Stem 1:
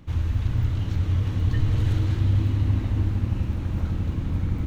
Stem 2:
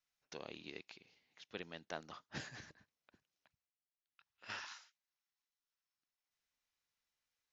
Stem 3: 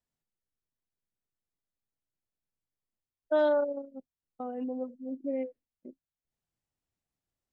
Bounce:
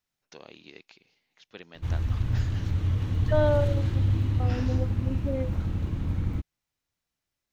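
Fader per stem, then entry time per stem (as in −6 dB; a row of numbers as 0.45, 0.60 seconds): −3.0, +1.5, +1.0 decibels; 1.75, 0.00, 0.00 seconds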